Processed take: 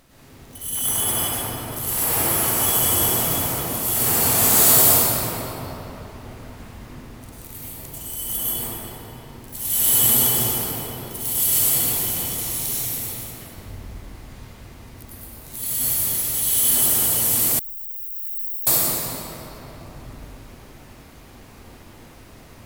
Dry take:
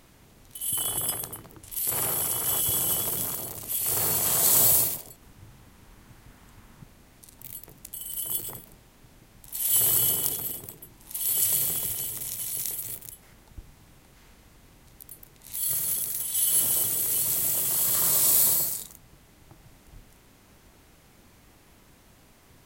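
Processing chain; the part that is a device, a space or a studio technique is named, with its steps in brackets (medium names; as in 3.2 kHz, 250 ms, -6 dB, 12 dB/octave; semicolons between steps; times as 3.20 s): shimmer-style reverb (harmony voices +12 st -5 dB; reverberation RT60 3.9 s, pre-delay 94 ms, DRR -11 dB); 17.59–18.67 s: inverse Chebyshev band-stop 130–7900 Hz, stop band 70 dB; trim -1.5 dB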